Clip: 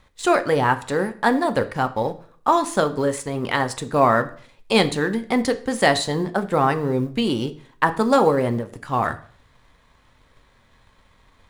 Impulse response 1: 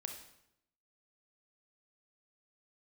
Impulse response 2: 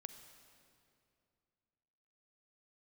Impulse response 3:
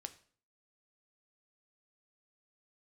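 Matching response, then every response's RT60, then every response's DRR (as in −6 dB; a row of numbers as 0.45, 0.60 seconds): 3; 0.80, 2.5, 0.50 seconds; 4.0, 8.5, 8.5 decibels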